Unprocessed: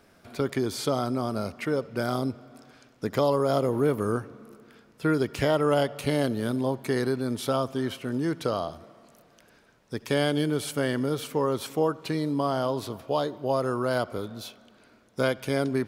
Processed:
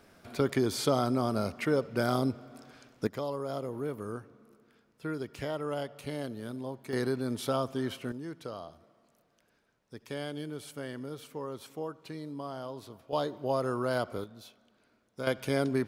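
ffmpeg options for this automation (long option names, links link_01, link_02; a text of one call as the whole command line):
ffmpeg -i in.wav -af "asetnsamples=nb_out_samples=441:pad=0,asendcmd='3.07 volume volume -11.5dB;6.93 volume volume -4dB;8.12 volume volume -13dB;13.13 volume volume -4dB;14.24 volume volume -11.5dB;15.27 volume volume -2.5dB',volume=-0.5dB" out.wav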